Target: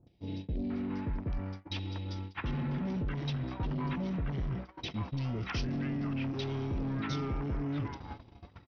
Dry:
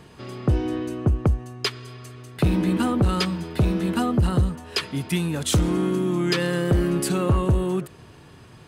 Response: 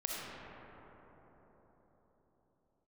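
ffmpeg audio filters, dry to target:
-filter_complex "[0:a]aresample=16000,asoftclip=type=tanh:threshold=-24dB,aresample=44100,asetrate=34006,aresample=44100,atempo=1.29684,areverse,acompressor=threshold=-40dB:ratio=6,areverse,lowpass=5600,acrossover=split=650|2600[link_01][link_02][link_03];[link_03]adelay=70[link_04];[link_02]adelay=700[link_05];[link_01][link_05][link_04]amix=inputs=3:normalize=0,agate=range=-23dB:threshold=-45dB:ratio=16:detection=peak,volume=6.5dB"

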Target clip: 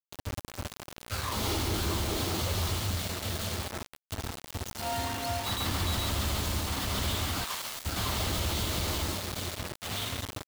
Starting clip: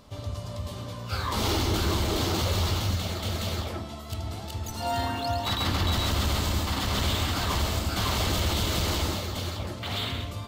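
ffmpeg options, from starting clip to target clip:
ffmpeg -i in.wav -filter_complex "[0:a]asplit=3[link_01][link_02][link_03];[link_01]afade=type=out:start_time=7.43:duration=0.02[link_04];[link_02]highpass=900,afade=type=in:start_time=7.43:duration=0.02,afade=type=out:start_time=7.84:duration=0.02[link_05];[link_03]afade=type=in:start_time=7.84:duration=0.02[link_06];[link_04][link_05][link_06]amix=inputs=3:normalize=0,acrusher=bits=4:mix=0:aa=0.000001,volume=-5dB" out.wav

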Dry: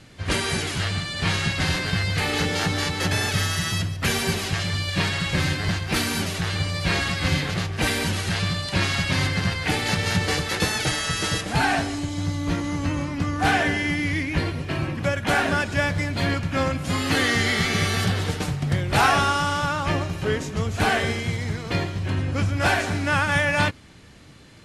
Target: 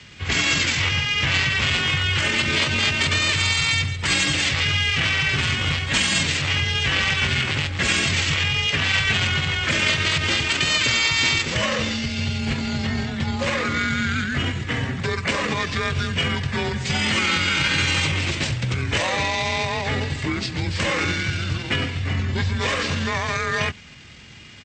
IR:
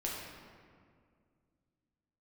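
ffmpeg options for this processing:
-af "afreqshift=37,alimiter=limit=-16dB:level=0:latency=1:release=69,areverse,acompressor=mode=upward:threshold=-45dB:ratio=2.5,areverse,highshelf=frequency=2400:width_type=q:width=1.5:gain=8,asetrate=30296,aresample=44100,atempo=1.45565,volume=1.5dB"

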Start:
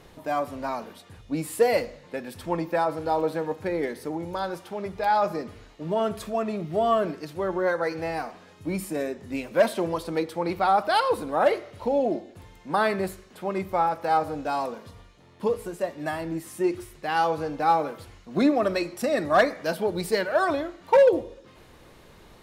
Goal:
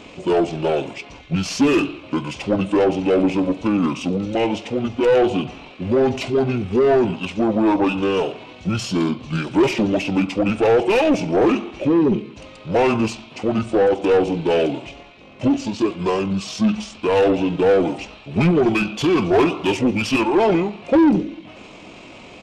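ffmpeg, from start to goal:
ffmpeg -i in.wav -filter_complex "[0:a]highshelf=frequency=3600:width_type=q:width=3:gain=7,asplit=2[link_01][link_02];[link_02]highpass=frequency=720:poles=1,volume=23dB,asoftclip=type=tanh:threshold=-6.5dB[link_03];[link_01][link_03]amix=inputs=2:normalize=0,lowpass=frequency=2100:poles=1,volume=-6dB,asetrate=26222,aresample=44100,atempo=1.68179" out.wav

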